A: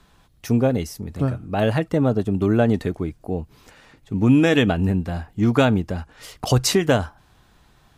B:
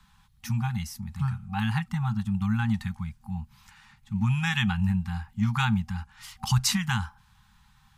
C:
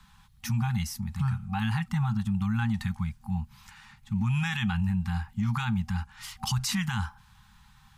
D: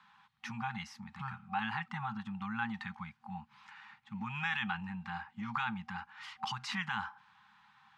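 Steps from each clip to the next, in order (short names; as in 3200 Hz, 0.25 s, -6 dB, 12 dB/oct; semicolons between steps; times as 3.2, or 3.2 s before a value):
FFT band-reject 230–770 Hz; gain -4 dB
limiter -23.5 dBFS, peak gain reduction 11 dB; gain +3 dB
BPF 390–2600 Hz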